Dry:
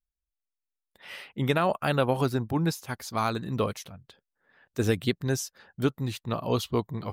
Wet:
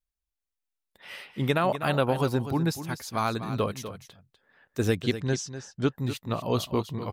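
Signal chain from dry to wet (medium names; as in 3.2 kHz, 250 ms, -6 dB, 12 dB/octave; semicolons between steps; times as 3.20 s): 4.95–5.92 s: low-pass 7.2 kHz 24 dB/octave; on a send: delay 248 ms -11.5 dB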